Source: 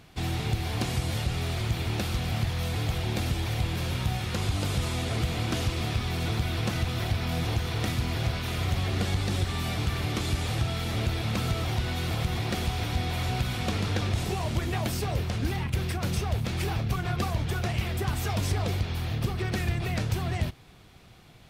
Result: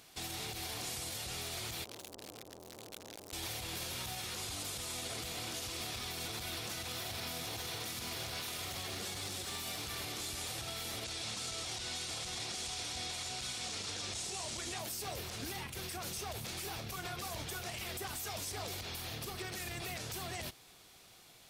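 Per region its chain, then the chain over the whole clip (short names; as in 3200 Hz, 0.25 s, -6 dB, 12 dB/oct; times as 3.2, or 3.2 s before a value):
1.84–3.33 overloaded stage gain 33 dB + core saturation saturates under 370 Hz
6.82–9.83 HPF 58 Hz + lo-fi delay 92 ms, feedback 35%, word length 9-bit, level -11 dB
11.04–14.79 LPF 8600 Hz 24 dB/oct + high shelf 4200 Hz +9.5 dB
whole clip: tone controls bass -12 dB, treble +12 dB; limiter -26 dBFS; gain -5.5 dB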